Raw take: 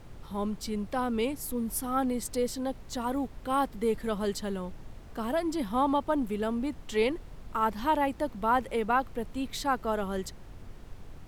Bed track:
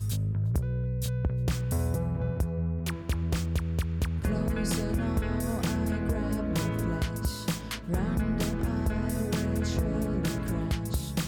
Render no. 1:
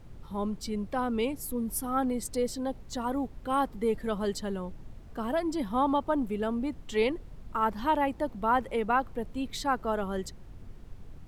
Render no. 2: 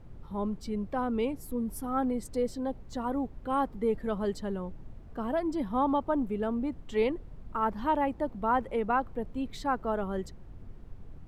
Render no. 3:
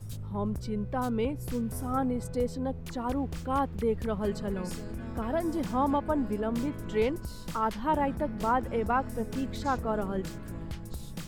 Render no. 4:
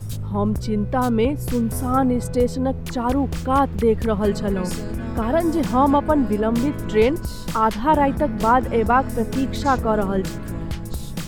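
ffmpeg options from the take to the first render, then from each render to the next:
ffmpeg -i in.wav -af "afftdn=noise_reduction=6:noise_floor=-47" out.wav
ffmpeg -i in.wav -af "highshelf=frequency=2500:gain=-10.5" out.wav
ffmpeg -i in.wav -i bed.wav -filter_complex "[1:a]volume=-10dB[link_01];[0:a][link_01]amix=inputs=2:normalize=0" out.wav
ffmpeg -i in.wav -af "volume=10.5dB" out.wav

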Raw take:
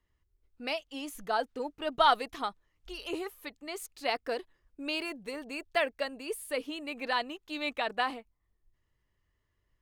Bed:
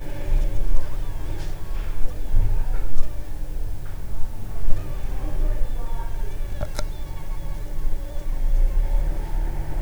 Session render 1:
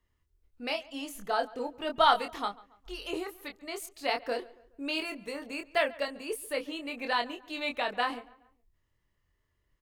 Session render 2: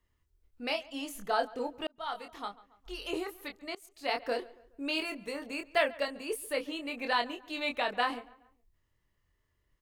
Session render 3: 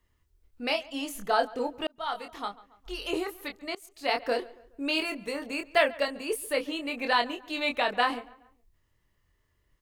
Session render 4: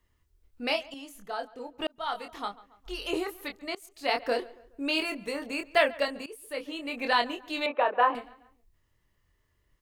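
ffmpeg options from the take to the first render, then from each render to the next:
ffmpeg -i in.wav -filter_complex "[0:a]asplit=2[link_01][link_02];[link_02]adelay=25,volume=-5.5dB[link_03];[link_01][link_03]amix=inputs=2:normalize=0,asplit=2[link_04][link_05];[link_05]adelay=140,lowpass=frequency=2700:poles=1,volume=-20.5dB,asplit=2[link_06][link_07];[link_07]adelay=140,lowpass=frequency=2700:poles=1,volume=0.43,asplit=2[link_08][link_09];[link_09]adelay=140,lowpass=frequency=2700:poles=1,volume=0.43[link_10];[link_04][link_06][link_08][link_10]amix=inputs=4:normalize=0" out.wav
ffmpeg -i in.wav -filter_complex "[0:a]asplit=3[link_01][link_02][link_03];[link_01]atrim=end=1.87,asetpts=PTS-STARTPTS,afade=type=out:start_time=1.866:duration=0.004:curve=hsin[link_04];[link_02]atrim=start=1.87:end=3.75,asetpts=PTS-STARTPTS,afade=type=in:duration=1.17,afade=type=out:start_time=1.876:duration=0.004:curve=hsin:silence=0.0707946[link_05];[link_03]atrim=start=3.75,asetpts=PTS-STARTPTS,afade=type=in:duration=0.46:silence=0.0707946[link_06];[link_04][link_05][link_06]concat=n=3:v=0:a=1" out.wav
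ffmpeg -i in.wav -af "volume=4.5dB" out.wav
ffmpeg -i in.wav -filter_complex "[0:a]asettb=1/sr,asplit=3[link_01][link_02][link_03];[link_01]atrim=end=7.664[link_04];[link_02]atrim=start=7.66:end=8.15,asetpts=PTS-STARTPTS,afade=type=in:duration=0.004:curve=qsin,afade=type=out:start_time=0.486:duration=0.004:curve=qsin,highpass=frequency=300:width=0.5412,highpass=frequency=300:width=1.3066,equalizer=frequency=530:width_type=q:width=4:gain=6,equalizer=frequency=1000:width_type=q:width=4:gain=6,equalizer=frequency=2100:width_type=q:width=4:gain=-8,lowpass=frequency=2400:width=0.5412,lowpass=frequency=2400:width=1.3066[link_05];[link_03]atrim=start=8.146[link_06];[link_04][link_05]acrossfade=duration=0.004:curve1=hsin:curve2=qsin[link_07];[link_07][link_06]acrossfade=duration=0.004:curve1=qsin:curve2=hsin,asplit=4[link_08][link_09][link_10][link_11];[link_08]atrim=end=0.942[link_12];[link_09]atrim=start=0.938:end=1.792,asetpts=PTS-STARTPTS,volume=-10dB[link_13];[link_10]atrim=start=1.788:end=6.26,asetpts=PTS-STARTPTS,afade=type=out:start_time=4.468:duration=0.004:curve=hsin:silence=0.11885[link_14];[link_11]atrim=start=6.26,asetpts=PTS-STARTPTS,afade=type=in:duration=0.8:silence=0.11885[link_15];[link_12][link_13]acrossfade=duration=0.004:curve1=hsin:curve2=hsin[link_16];[link_14][link_15]concat=n=2:v=0:a=1[link_17];[link_16][link_17]acrossfade=duration=0.004:curve1=hsin:curve2=hsin" out.wav

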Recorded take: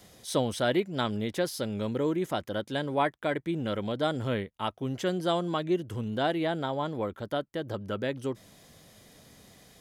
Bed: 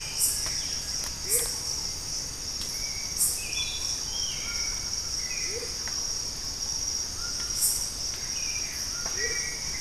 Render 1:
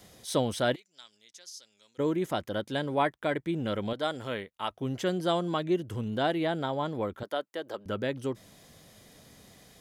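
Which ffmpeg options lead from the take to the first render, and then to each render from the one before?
ffmpeg -i in.wav -filter_complex "[0:a]asplit=3[link_01][link_02][link_03];[link_01]afade=type=out:start_time=0.74:duration=0.02[link_04];[link_02]bandpass=frequency=6200:width_type=q:width=3.6,afade=type=in:start_time=0.74:duration=0.02,afade=type=out:start_time=1.98:duration=0.02[link_05];[link_03]afade=type=in:start_time=1.98:duration=0.02[link_06];[link_04][link_05][link_06]amix=inputs=3:normalize=0,asettb=1/sr,asplit=3[link_07][link_08][link_09];[link_07]atrim=end=3.934[link_10];[link_08]atrim=start=3.93:end=4.71,asetpts=PTS-STARTPTS,afade=type=in:duration=0.004:curve=qsin,afade=type=out:start_time=0.776:duration=0.004:curve=qsin,lowshelf=frequency=310:gain=-12[link_11];[link_09]atrim=start=4.706[link_12];[link_10][link_11]acrossfade=duration=0.004:curve1=hsin:curve2=qsin[link_13];[link_13][link_12]acrossfade=duration=0.004:curve1=qsin:curve2=hsin,asettb=1/sr,asplit=3[link_14][link_15][link_16];[link_14]atrim=end=7.234[link_17];[link_15]atrim=start=7.23:end=7.86,asetpts=PTS-STARTPTS,afade=type=in:duration=0.004:curve=qsin,afade=type=out:start_time=0.626:duration=0.004:curve=qsin,highpass=410[link_18];[link_16]atrim=start=7.856[link_19];[link_17][link_18]acrossfade=duration=0.004:curve1=hsin:curve2=qsin[link_20];[link_20][link_19]acrossfade=duration=0.004:curve1=qsin:curve2=hsin" out.wav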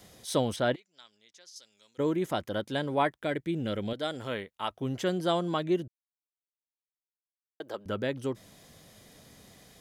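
ffmpeg -i in.wav -filter_complex "[0:a]asettb=1/sr,asplit=3[link_01][link_02][link_03];[link_01]atrim=end=0.564[link_04];[link_02]atrim=start=0.56:end=1.56,asetpts=PTS-STARTPTS,afade=type=in:duration=0.004:curve=qsin,afade=type=out:start_time=0.996:duration=0.004:curve=qsin,aemphasis=mode=reproduction:type=50kf[link_05];[link_03]atrim=start=1.556[link_06];[link_04][link_05]acrossfade=duration=0.004:curve1=hsin:curve2=qsin[link_07];[link_07][link_06]acrossfade=duration=0.004:curve1=qsin:curve2=hsin,asettb=1/sr,asplit=3[link_08][link_09][link_10];[link_08]atrim=end=3.184[link_11];[link_09]atrim=start=3.18:end=4.13,asetpts=PTS-STARTPTS,afade=type=in:duration=0.004:curve=qsin,afade=type=out:start_time=0.946:duration=0.004:curve=qsin,equalizer=frequency=1000:width=1.5:gain=-7.5[link_12];[link_10]atrim=start=4.126[link_13];[link_11][link_12]acrossfade=duration=0.004:curve1=hsin:curve2=qsin[link_14];[link_14][link_13]acrossfade=duration=0.004:curve1=qsin:curve2=hsin,asplit=3[link_15][link_16][link_17];[link_15]atrim=end=5.88,asetpts=PTS-STARTPTS,afade=type=out:start_time=5.876:duration=0.004:curve=hsin[link_18];[link_16]atrim=start=5.88:end=7.6,asetpts=PTS-STARTPTS,volume=0[link_19];[link_17]atrim=start=7.6,asetpts=PTS-STARTPTS,afade=type=in:duration=0.004:curve=hsin[link_20];[link_18][link_19][link_20]concat=n=3:v=0:a=1" out.wav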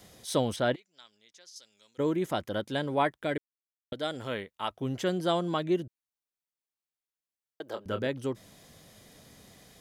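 ffmpeg -i in.wav -filter_complex "[0:a]asettb=1/sr,asplit=3[link_01][link_02][link_03];[link_01]atrim=end=7.664[link_04];[link_02]atrim=start=7.66:end=8.07,asetpts=PTS-STARTPTS,afade=type=in:duration=0.004:curve=qsin,afade=type=out:start_time=0.406:duration=0.004:curve=qsin,asplit=2[link_05][link_06];[link_06]adelay=27,volume=-8dB[link_07];[link_05][link_07]amix=inputs=2:normalize=0,atrim=end_sample=18081[link_08];[link_03]atrim=start=8.066[link_09];[link_04][link_08]acrossfade=duration=0.004:curve1=hsin:curve2=qsin[link_10];[link_10][link_09]acrossfade=duration=0.004:curve1=qsin:curve2=hsin,asplit=3[link_11][link_12][link_13];[link_11]atrim=end=3.38,asetpts=PTS-STARTPTS,afade=type=out:start_time=3.376:duration=0.004:curve=hsin[link_14];[link_12]atrim=start=3.38:end=3.92,asetpts=PTS-STARTPTS,volume=0[link_15];[link_13]atrim=start=3.92,asetpts=PTS-STARTPTS,afade=type=in:duration=0.004:curve=hsin[link_16];[link_14][link_15][link_16]concat=n=3:v=0:a=1" out.wav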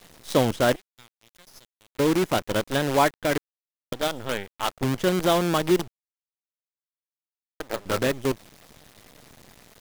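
ffmpeg -i in.wav -filter_complex "[0:a]asplit=2[link_01][link_02];[link_02]adynamicsmooth=sensitivity=4.5:basefreq=5100,volume=1dB[link_03];[link_01][link_03]amix=inputs=2:normalize=0,acrusher=bits=5:dc=4:mix=0:aa=0.000001" out.wav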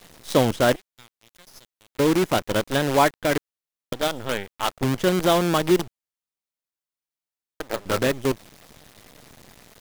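ffmpeg -i in.wav -af "volume=2dB" out.wav

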